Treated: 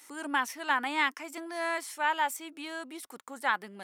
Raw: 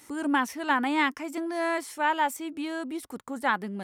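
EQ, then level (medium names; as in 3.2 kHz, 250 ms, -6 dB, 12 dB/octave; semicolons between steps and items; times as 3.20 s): high-pass 1 kHz 6 dB/octave; 0.0 dB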